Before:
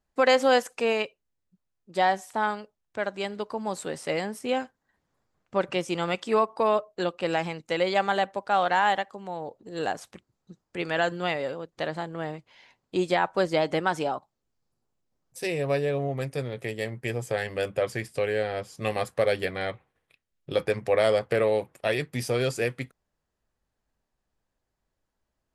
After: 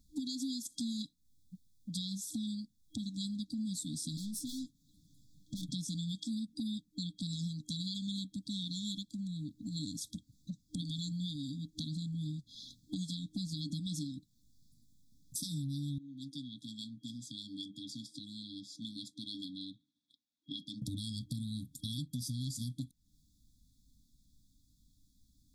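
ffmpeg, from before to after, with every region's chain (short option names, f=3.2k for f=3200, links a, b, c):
-filter_complex "[0:a]asettb=1/sr,asplit=3[a][b][c];[a]atrim=end=4.174[d];[b]atrim=start=4.17:end=5.71,asetpts=PTS-STARTPTS,afade=t=in:d=0.004:c=qsin,afade=t=out:st=1.536:d=0.004:c=qsin,aeval=exprs='(tanh(79.4*val(0)+0.25)-tanh(0.25))/79.4':c=same,aecho=1:1:6.4:0.38,atrim=end_sample=67914[e];[c]atrim=start=5.706[f];[d][e]acrossfade=d=0.004:c1=hsin:c2=qsin[g];[g][f]acrossfade=d=0.004:c1=qsin:c2=hsin,asettb=1/sr,asplit=3[h][i][j];[h]atrim=end=15.984[k];[i]atrim=start=15.98:end=20.82,asetpts=PTS-STARTPTS,afade=t=in:d=0.004:c=qsin,afade=t=out:st=4.836:d=0.004:c=qsin,highpass=220,lowpass=6.1k,acrossover=split=380 2400:gain=0.1 1 0.2[l][m][n];[l][m][n]amix=inputs=3:normalize=0[o];[j]atrim=start=20.816[p];[k][o]acrossfade=d=0.004:c1=hsin:c2=qsin[q];[q][p]acrossfade=d=0.004:c1=qsin:c2=hsin,afftfilt=real='re*(1-between(b*sr/4096,310,3300))':imag='im*(1-between(b*sr/4096,310,3300))':win_size=4096:overlap=0.75,alimiter=level_in=6dB:limit=-24dB:level=0:latency=1:release=270,volume=-6dB,acompressor=threshold=-55dB:ratio=3,volume=14dB"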